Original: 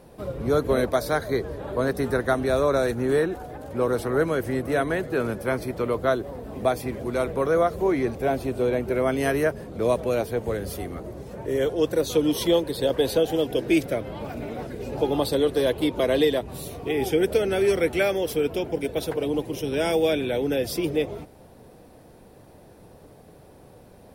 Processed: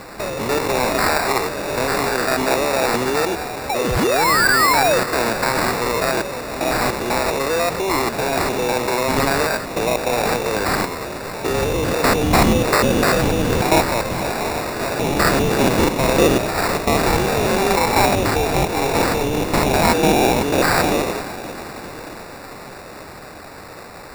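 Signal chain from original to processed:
spectrum averaged block by block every 100 ms
spectral tilt +4 dB per octave
sound drawn into the spectrogram fall, 0:03.69–0:04.99, 3,600–7,200 Hz −33 dBFS
in parallel at +1 dB: compressor whose output falls as the input rises −34 dBFS, ratio −1
on the sum: flat-topped bell 3,500 Hz +9.5 dB
on a send: feedback delay with all-pass diffusion 495 ms, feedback 62%, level −16 dB
on the sum: decimation without filtering 14×
level +3.5 dB

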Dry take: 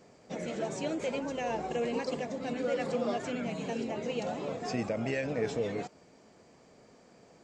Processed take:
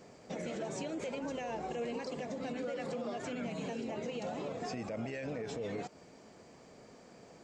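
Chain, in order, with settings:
downward compressor 2 to 1, threshold −40 dBFS, peak gain reduction 7.5 dB
brickwall limiter −33 dBFS, peak gain reduction 7.5 dB
level +2.5 dB

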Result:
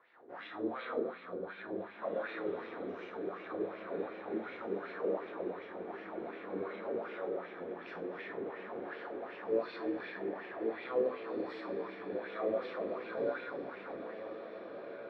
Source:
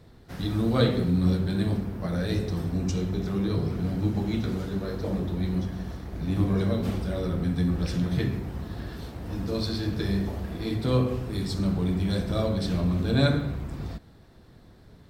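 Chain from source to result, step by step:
downward compressor, threshold −29 dBFS, peak gain reduction 12.5 dB
low-shelf EQ 74 Hz −10.5 dB
convolution reverb RT60 1.9 s, pre-delay 7 ms, DRR −3.5 dB
LFO wah 2.7 Hz 400–2,500 Hz, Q 2.9
three-way crossover with the lows and the highs turned down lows −16 dB, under 260 Hz, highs −23 dB, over 3,000 Hz
feedback delay with all-pass diffusion 1,835 ms, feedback 41%, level −8.5 dB
level +4 dB

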